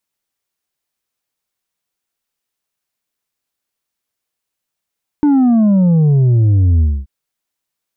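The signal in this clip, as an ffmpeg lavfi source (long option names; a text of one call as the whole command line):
ffmpeg -f lavfi -i "aevalsrc='0.376*clip((1.83-t)/0.25,0,1)*tanh(1.68*sin(2*PI*300*1.83/log(65/300)*(exp(log(65/300)*t/1.83)-1)))/tanh(1.68)':duration=1.83:sample_rate=44100" out.wav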